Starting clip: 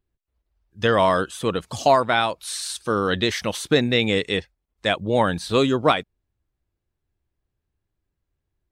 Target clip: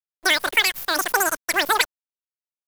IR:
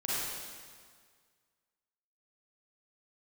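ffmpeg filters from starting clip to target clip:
-af "asetrate=143766,aresample=44100,acrusher=bits=6:dc=4:mix=0:aa=0.000001"

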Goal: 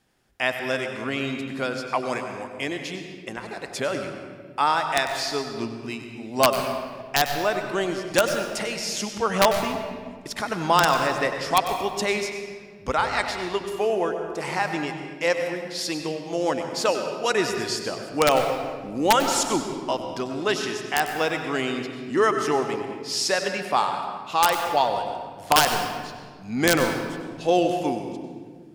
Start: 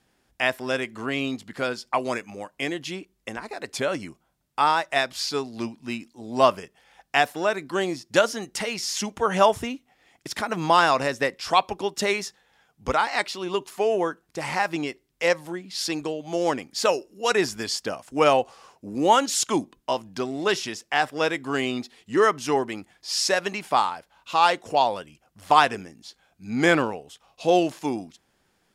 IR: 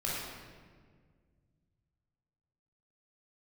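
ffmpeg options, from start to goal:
-filter_complex "[0:a]aeval=exprs='(mod(2.11*val(0)+1,2)-1)/2.11':c=same,asplit=2[s0][s1];[1:a]atrim=start_sample=2205,adelay=96[s2];[s1][s2]afir=irnorm=-1:irlink=0,volume=0.282[s3];[s0][s3]amix=inputs=2:normalize=0,volume=0.891"

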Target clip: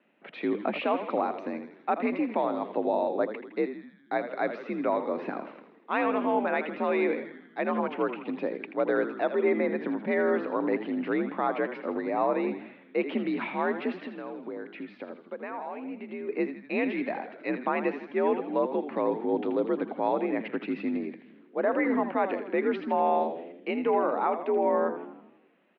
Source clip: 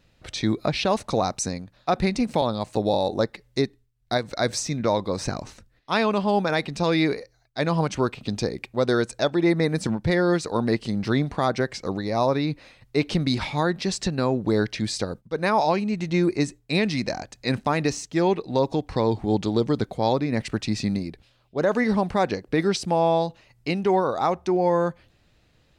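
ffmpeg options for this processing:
-filter_complex "[0:a]asplit=2[s0][s1];[s1]alimiter=limit=0.0891:level=0:latency=1,volume=0.708[s2];[s0][s2]amix=inputs=2:normalize=0,asplit=3[s3][s4][s5];[s3]afade=t=out:st=14.05:d=0.02[s6];[s4]acompressor=threshold=0.0398:ratio=6,afade=t=in:st=14.05:d=0.02,afade=t=out:st=16.28:d=0.02[s7];[s5]afade=t=in:st=16.28:d=0.02[s8];[s6][s7][s8]amix=inputs=3:normalize=0,asplit=9[s9][s10][s11][s12][s13][s14][s15][s16][s17];[s10]adelay=81,afreqshift=-72,volume=0.316[s18];[s11]adelay=162,afreqshift=-144,volume=0.195[s19];[s12]adelay=243,afreqshift=-216,volume=0.122[s20];[s13]adelay=324,afreqshift=-288,volume=0.075[s21];[s14]adelay=405,afreqshift=-360,volume=0.0468[s22];[s15]adelay=486,afreqshift=-432,volume=0.0288[s23];[s16]adelay=567,afreqshift=-504,volume=0.018[s24];[s17]adelay=648,afreqshift=-576,volume=0.0111[s25];[s9][s18][s19][s20][s21][s22][s23][s24][s25]amix=inputs=9:normalize=0,highpass=f=170:t=q:w=0.5412,highpass=f=170:t=q:w=1.307,lowpass=f=2700:t=q:w=0.5176,lowpass=f=2700:t=q:w=0.7071,lowpass=f=2700:t=q:w=1.932,afreqshift=55,volume=0.473"

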